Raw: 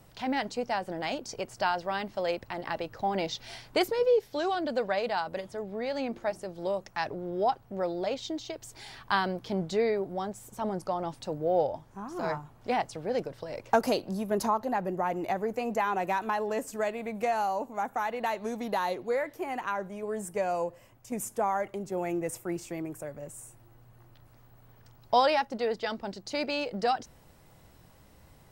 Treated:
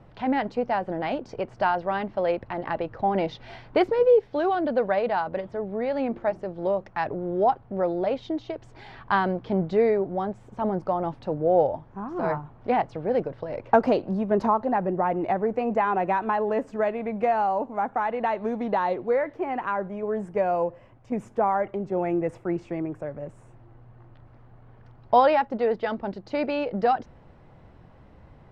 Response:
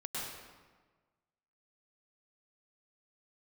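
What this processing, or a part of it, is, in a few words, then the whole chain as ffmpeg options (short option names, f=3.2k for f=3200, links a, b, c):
phone in a pocket: -af "lowpass=3.1k,highshelf=f=2.4k:g=-11,volume=6.5dB"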